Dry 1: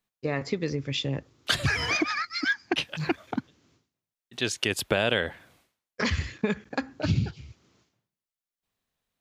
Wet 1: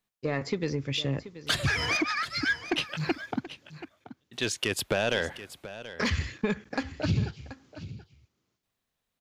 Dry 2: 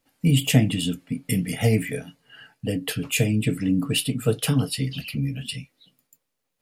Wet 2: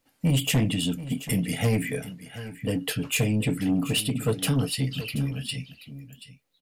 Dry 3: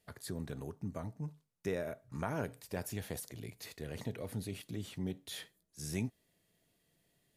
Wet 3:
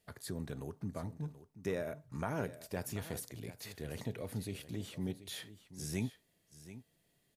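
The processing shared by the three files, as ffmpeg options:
-filter_complex "[0:a]asoftclip=type=tanh:threshold=-17dB,asplit=2[link_01][link_02];[link_02]aecho=0:1:731:0.188[link_03];[link_01][link_03]amix=inputs=2:normalize=0"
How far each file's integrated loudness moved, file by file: −1.5, −2.5, 0.0 LU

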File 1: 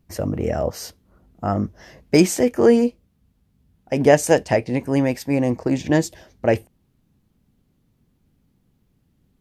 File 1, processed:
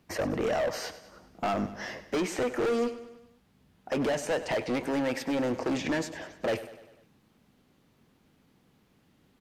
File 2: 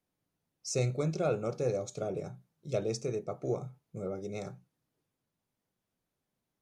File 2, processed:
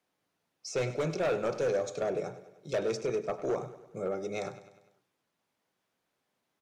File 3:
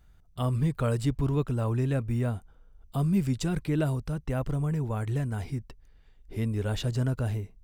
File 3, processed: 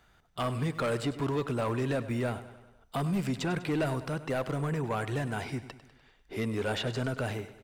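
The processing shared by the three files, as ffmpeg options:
-filter_complex "[0:a]acrossover=split=85|3100[link_01][link_02][link_03];[link_01]acompressor=threshold=-48dB:ratio=4[link_04];[link_02]acompressor=threshold=-24dB:ratio=4[link_05];[link_03]acompressor=threshold=-48dB:ratio=4[link_06];[link_04][link_05][link_06]amix=inputs=3:normalize=0,asplit=2[link_07][link_08];[link_08]highpass=frequency=720:poles=1,volume=23dB,asoftclip=type=tanh:threshold=-9.5dB[link_09];[link_07][link_09]amix=inputs=2:normalize=0,lowpass=frequency=3500:poles=1,volume=-6dB,volume=18dB,asoftclip=hard,volume=-18dB,aecho=1:1:99|198|297|396|495:0.188|0.104|0.057|0.0313|0.0172,volume=-7dB"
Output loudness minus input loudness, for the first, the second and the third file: −10.5, +1.5, −3.0 LU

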